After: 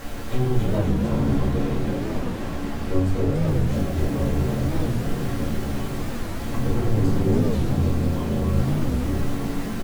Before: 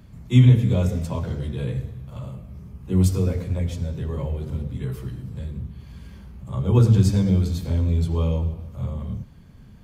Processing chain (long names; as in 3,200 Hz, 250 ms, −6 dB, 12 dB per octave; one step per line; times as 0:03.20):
lower of the sound and its delayed copy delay 2.1 ms
soft clipping −19 dBFS, distortion −8 dB
background noise pink −37 dBFS
0:00.77–0:03.50: high-shelf EQ 6,400 Hz −7 dB
downward compressor, threshold −24 dBFS, peak gain reduction 5 dB
high-shelf EQ 2,400 Hz −7.5 dB
echo with shifted repeats 278 ms, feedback 59%, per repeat +50 Hz, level −4.5 dB
rectangular room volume 190 cubic metres, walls furnished, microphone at 2.2 metres
wow of a warped record 45 rpm, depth 250 cents
level −1 dB